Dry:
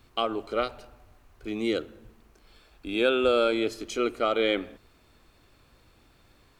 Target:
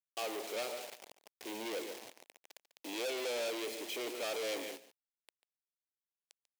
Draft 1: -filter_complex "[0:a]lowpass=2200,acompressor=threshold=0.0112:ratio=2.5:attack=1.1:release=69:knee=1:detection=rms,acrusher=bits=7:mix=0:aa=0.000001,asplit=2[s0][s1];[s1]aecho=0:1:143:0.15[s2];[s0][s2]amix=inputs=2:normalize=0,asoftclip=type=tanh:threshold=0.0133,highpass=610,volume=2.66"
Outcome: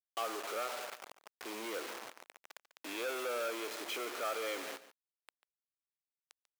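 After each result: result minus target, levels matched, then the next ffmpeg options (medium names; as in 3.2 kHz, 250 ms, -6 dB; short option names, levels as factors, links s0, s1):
compression: peak gain reduction +14.5 dB; 1 kHz band +5.0 dB
-filter_complex "[0:a]lowpass=2200,acrusher=bits=7:mix=0:aa=0.000001,asplit=2[s0][s1];[s1]aecho=0:1:143:0.15[s2];[s0][s2]amix=inputs=2:normalize=0,asoftclip=type=tanh:threshold=0.0133,highpass=610,volume=2.66"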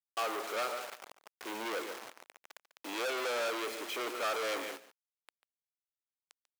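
1 kHz band +5.5 dB
-filter_complex "[0:a]lowpass=2200,acrusher=bits=7:mix=0:aa=0.000001,asplit=2[s0][s1];[s1]aecho=0:1:143:0.15[s2];[s0][s2]amix=inputs=2:normalize=0,asoftclip=type=tanh:threshold=0.0133,highpass=610,equalizer=f=1300:w=1.6:g=-14.5,volume=2.66"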